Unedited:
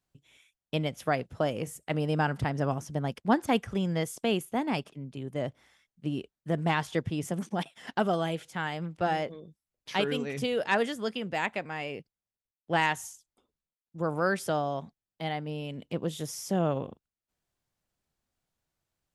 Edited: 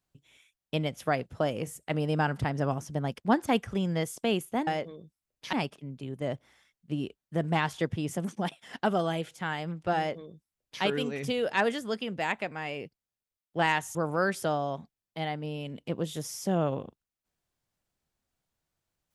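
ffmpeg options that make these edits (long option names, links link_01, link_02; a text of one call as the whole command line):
ffmpeg -i in.wav -filter_complex "[0:a]asplit=4[link_01][link_02][link_03][link_04];[link_01]atrim=end=4.672[link_05];[link_02]atrim=start=9.108:end=9.972[link_06];[link_03]atrim=start=4.668:end=13.092[link_07];[link_04]atrim=start=13.988[link_08];[link_05][link_06]acrossfade=duration=0.004:curve1=hsin:curve2=hsin[link_09];[link_09][link_07]acrossfade=duration=0.004:curve1=hsin:curve2=hsin[link_10];[link_10][link_08]acrossfade=duration=0.004:curve1=hsin:curve2=hsin" out.wav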